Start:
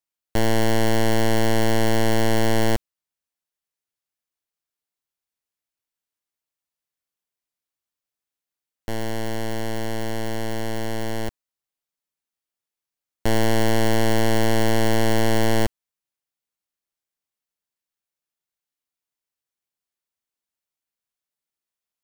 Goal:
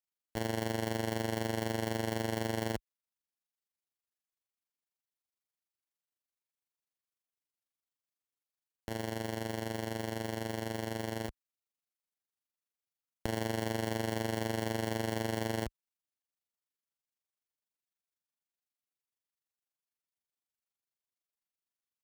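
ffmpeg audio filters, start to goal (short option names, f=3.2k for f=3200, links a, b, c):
-af "highpass=41,alimiter=limit=-15dB:level=0:latency=1,tremolo=f=24:d=0.667,volume=-5.5dB"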